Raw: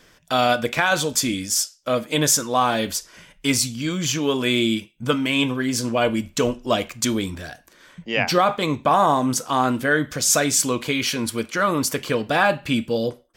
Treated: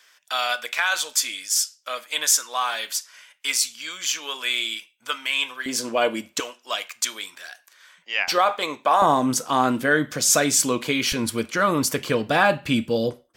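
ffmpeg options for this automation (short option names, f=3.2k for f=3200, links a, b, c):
-af "asetnsamples=n=441:p=0,asendcmd='5.66 highpass f 360;6.4 highpass f 1200;8.28 highpass f 540;9.02 highpass f 140;11.12 highpass f 57',highpass=1.2k"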